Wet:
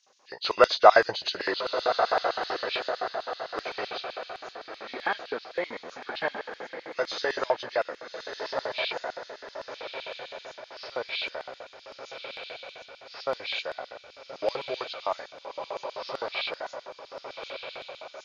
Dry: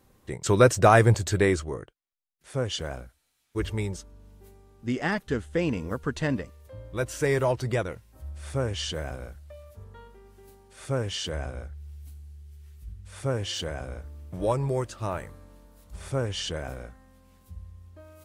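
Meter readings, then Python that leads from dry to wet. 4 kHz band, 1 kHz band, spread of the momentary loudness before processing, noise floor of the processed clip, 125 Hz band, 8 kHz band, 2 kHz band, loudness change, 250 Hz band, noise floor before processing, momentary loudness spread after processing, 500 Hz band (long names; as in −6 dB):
+3.0 dB, +3.0 dB, 22 LU, −53 dBFS, −28.5 dB, −13.5 dB, +1.5 dB, −2.5 dB, −13.0 dB, −70 dBFS, 16 LU, −0.5 dB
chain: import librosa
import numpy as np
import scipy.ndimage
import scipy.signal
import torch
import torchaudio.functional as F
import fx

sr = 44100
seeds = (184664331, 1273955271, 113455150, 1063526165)

y = fx.freq_compress(x, sr, knee_hz=1400.0, ratio=1.5)
y = fx.echo_diffused(y, sr, ms=1231, feedback_pct=45, wet_db=-6)
y = fx.filter_lfo_highpass(y, sr, shape='square', hz=7.8, low_hz=700.0, high_hz=3600.0, q=1.4)
y = F.gain(torch.from_numpy(y), 2.5).numpy()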